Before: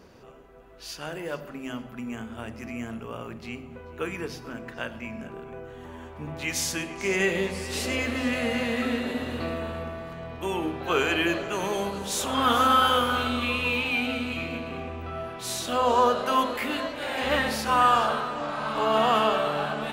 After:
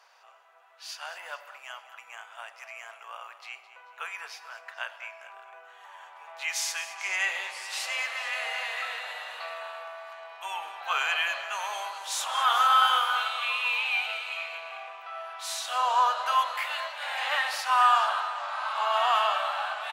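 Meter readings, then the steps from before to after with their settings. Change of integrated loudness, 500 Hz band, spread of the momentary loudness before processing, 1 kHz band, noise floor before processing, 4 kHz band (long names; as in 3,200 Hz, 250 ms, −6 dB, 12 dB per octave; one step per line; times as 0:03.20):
−1.0 dB, −11.5 dB, 17 LU, −0.5 dB, −44 dBFS, −0.5 dB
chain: Butterworth high-pass 730 Hz 36 dB per octave
high-shelf EQ 11,000 Hz −9 dB
on a send: single-tap delay 212 ms −14.5 dB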